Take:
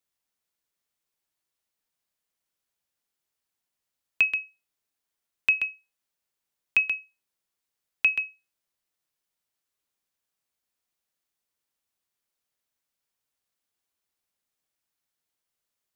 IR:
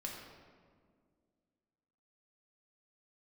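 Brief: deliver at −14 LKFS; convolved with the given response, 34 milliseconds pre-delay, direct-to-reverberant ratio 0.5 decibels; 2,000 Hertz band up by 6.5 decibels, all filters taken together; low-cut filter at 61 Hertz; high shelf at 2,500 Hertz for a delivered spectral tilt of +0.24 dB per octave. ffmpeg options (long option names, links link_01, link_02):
-filter_complex "[0:a]highpass=61,equalizer=frequency=2000:width_type=o:gain=7.5,highshelf=frequency=2500:gain=3,asplit=2[link_01][link_02];[1:a]atrim=start_sample=2205,adelay=34[link_03];[link_02][link_03]afir=irnorm=-1:irlink=0,volume=0.5dB[link_04];[link_01][link_04]amix=inputs=2:normalize=0,volume=0.5dB"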